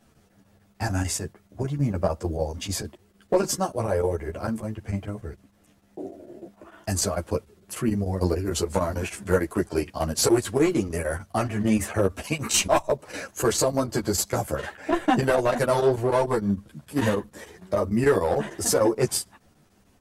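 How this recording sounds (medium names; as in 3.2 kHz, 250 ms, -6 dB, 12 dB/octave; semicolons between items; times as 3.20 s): chopped level 6.7 Hz, depth 65%, duty 85%; a shimmering, thickened sound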